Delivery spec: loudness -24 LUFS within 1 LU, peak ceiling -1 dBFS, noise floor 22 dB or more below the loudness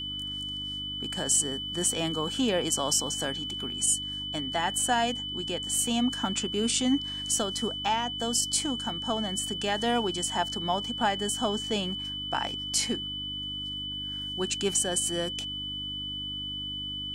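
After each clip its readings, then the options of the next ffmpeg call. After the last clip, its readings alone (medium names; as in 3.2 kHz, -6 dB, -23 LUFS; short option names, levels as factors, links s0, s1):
hum 50 Hz; highest harmonic 300 Hz; hum level -42 dBFS; steady tone 3 kHz; tone level -33 dBFS; loudness -28.5 LUFS; peak level -13.0 dBFS; loudness target -24.0 LUFS
-> -af "bandreject=f=50:t=h:w=4,bandreject=f=100:t=h:w=4,bandreject=f=150:t=h:w=4,bandreject=f=200:t=h:w=4,bandreject=f=250:t=h:w=4,bandreject=f=300:t=h:w=4"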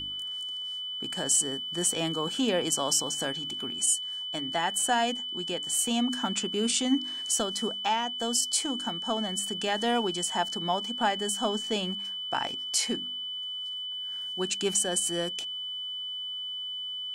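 hum not found; steady tone 3 kHz; tone level -33 dBFS
-> -af "bandreject=f=3000:w=30"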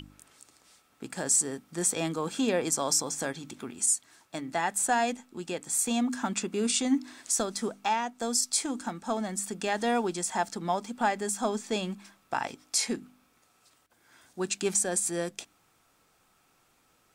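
steady tone not found; loudness -29.0 LUFS; peak level -13.5 dBFS; loudness target -24.0 LUFS
-> -af "volume=1.78"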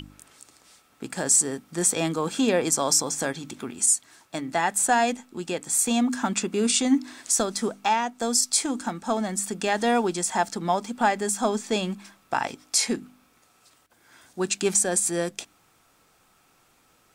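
loudness -24.0 LUFS; peak level -8.5 dBFS; noise floor -62 dBFS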